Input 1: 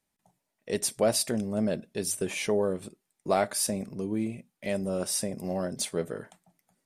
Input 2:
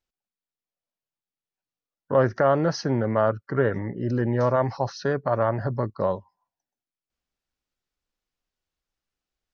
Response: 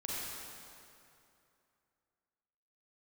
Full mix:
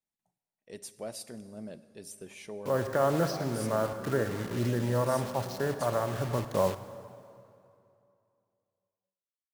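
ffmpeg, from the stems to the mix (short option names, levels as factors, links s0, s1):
-filter_complex "[0:a]volume=0.158,asplit=3[s0][s1][s2];[s1]volume=0.158[s3];[1:a]acrusher=bits=5:mix=0:aa=0.000001,adelay=550,volume=0.794,asplit=2[s4][s5];[s5]volume=0.178[s6];[s2]apad=whole_len=444666[s7];[s4][s7]sidechaincompress=threshold=0.00447:ratio=6:attack=16:release=1150[s8];[2:a]atrim=start_sample=2205[s9];[s3][s6]amix=inputs=2:normalize=0[s10];[s10][s9]afir=irnorm=-1:irlink=0[s11];[s0][s8][s11]amix=inputs=3:normalize=0"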